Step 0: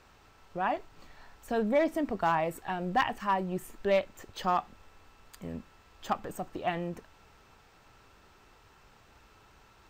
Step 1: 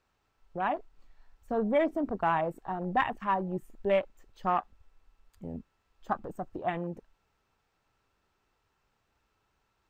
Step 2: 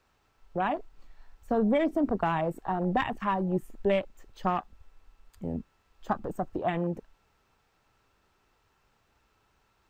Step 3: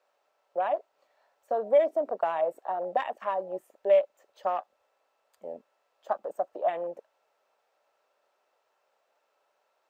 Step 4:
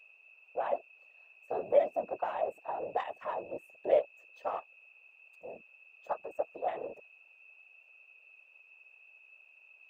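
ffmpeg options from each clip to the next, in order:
-af "afwtdn=0.0141"
-filter_complex "[0:a]acrossover=split=320|3000[a][b][c];[b]acompressor=threshold=-32dB:ratio=6[d];[a][d][c]amix=inputs=3:normalize=0,volume=6dB"
-af "highpass=f=580:t=q:w=4.9,volume=-6.5dB"
-af "aeval=exprs='val(0)+0.00316*sin(2*PI*2600*n/s)':c=same,afftfilt=real='hypot(re,im)*cos(2*PI*random(0))':imag='hypot(re,im)*sin(2*PI*random(1))':win_size=512:overlap=0.75"

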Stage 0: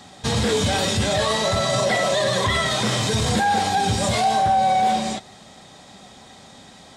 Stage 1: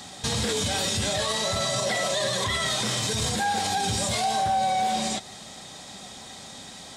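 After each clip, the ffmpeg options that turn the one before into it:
-af "highshelf=f=3.3k:g=9,acompressor=threshold=-28dB:ratio=1.5,alimiter=limit=-17dB:level=0:latency=1:release=70"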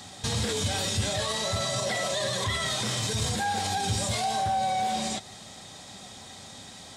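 -af "equalizer=f=97:t=o:w=0.58:g=7,volume=-3dB"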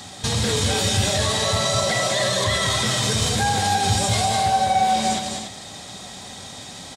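-af "aecho=1:1:204.1|288.6:0.562|0.398,volume=6dB"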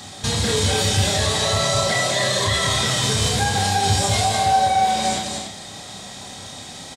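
-filter_complex "[0:a]asplit=2[a][b];[b]adelay=30,volume=-5dB[c];[a][c]amix=inputs=2:normalize=0"

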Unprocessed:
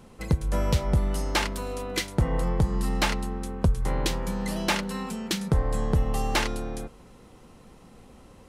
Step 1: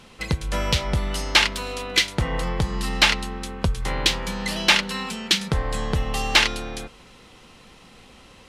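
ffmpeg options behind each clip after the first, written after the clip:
-af "equalizer=f=3.2k:t=o:w=2.5:g=14.5,volume=-1dB"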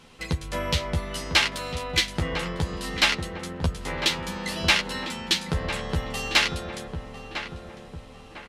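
-filter_complex "[0:a]asplit=2[a][b];[b]adelay=12,volume=-4dB[c];[a][c]amix=inputs=2:normalize=0,asplit=2[d][e];[e]adelay=1001,lowpass=f=1.5k:p=1,volume=-7dB,asplit=2[f][g];[g]adelay=1001,lowpass=f=1.5k:p=1,volume=0.49,asplit=2[h][i];[i]adelay=1001,lowpass=f=1.5k:p=1,volume=0.49,asplit=2[j][k];[k]adelay=1001,lowpass=f=1.5k:p=1,volume=0.49,asplit=2[l][m];[m]adelay=1001,lowpass=f=1.5k:p=1,volume=0.49,asplit=2[n][o];[o]adelay=1001,lowpass=f=1.5k:p=1,volume=0.49[p];[d][f][h][j][l][n][p]amix=inputs=7:normalize=0,volume=-5dB"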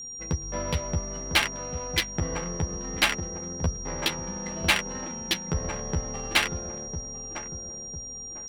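-af "adynamicsmooth=sensitivity=1.5:basefreq=680,aeval=exprs='val(0)+0.0178*sin(2*PI*5700*n/s)':c=same,volume=-1.5dB"

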